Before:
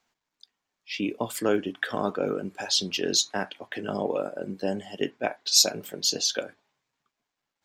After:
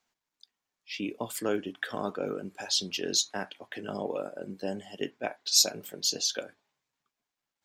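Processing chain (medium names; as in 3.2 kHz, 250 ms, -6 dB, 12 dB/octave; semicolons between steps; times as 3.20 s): treble shelf 4.9 kHz +4.5 dB; trim -5.5 dB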